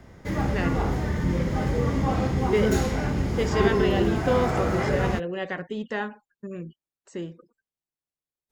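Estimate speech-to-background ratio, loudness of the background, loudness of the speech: −4.5 dB, −25.5 LKFS, −30.0 LKFS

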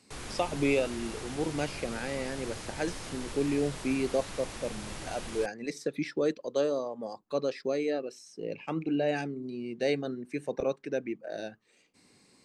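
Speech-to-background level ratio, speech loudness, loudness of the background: 8.5 dB, −33.0 LKFS, −41.5 LKFS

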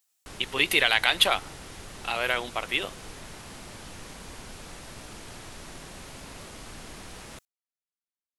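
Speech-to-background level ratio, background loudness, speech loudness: 18.5 dB, −43.0 LKFS, −24.5 LKFS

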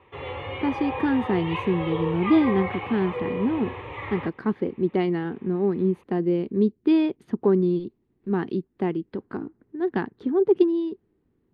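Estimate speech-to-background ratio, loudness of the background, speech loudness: 7.0 dB, −32.0 LKFS, −25.0 LKFS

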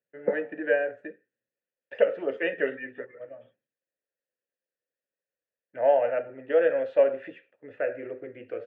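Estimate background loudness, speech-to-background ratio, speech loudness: −33.5 LKFS, 7.0 dB, −26.5 LKFS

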